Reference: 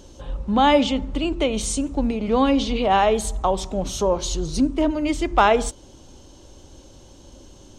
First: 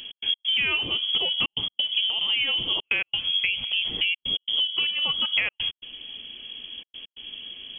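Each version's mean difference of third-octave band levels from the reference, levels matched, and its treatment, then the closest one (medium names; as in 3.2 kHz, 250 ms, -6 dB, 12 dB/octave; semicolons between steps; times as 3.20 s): 14.0 dB: trance gate "x.x.xxxxxxxx" 134 bpm -60 dB; compression 6:1, threshold -28 dBFS, peak gain reduction 16 dB; frequency inversion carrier 3.3 kHz; trim +5 dB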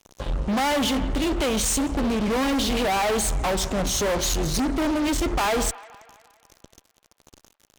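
10.0 dB: peaking EQ 7.9 kHz +3.5 dB 1.8 oct; fuzz box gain 31 dB, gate -38 dBFS; on a send: feedback echo behind a band-pass 172 ms, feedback 54%, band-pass 1.4 kHz, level -15 dB; on the sum: trim -8 dB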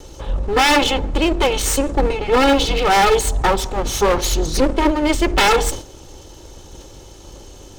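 7.0 dB: comb filter that takes the minimum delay 2.3 ms; wavefolder -16 dBFS; decay stretcher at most 130 dB/s; trim +8 dB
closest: third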